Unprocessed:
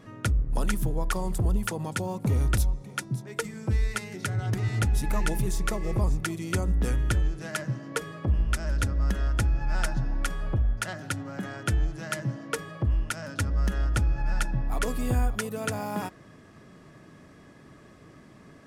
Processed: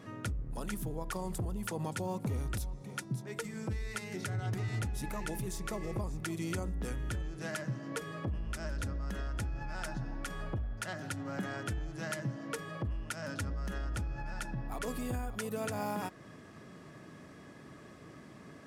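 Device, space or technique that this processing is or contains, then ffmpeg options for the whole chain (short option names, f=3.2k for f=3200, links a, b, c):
stacked limiters: -af "alimiter=limit=-19.5dB:level=0:latency=1:release=10,alimiter=level_in=2dB:limit=-24dB:level=0:latency=1:release=216,volume=-2dB,highpass=f=89:p=1"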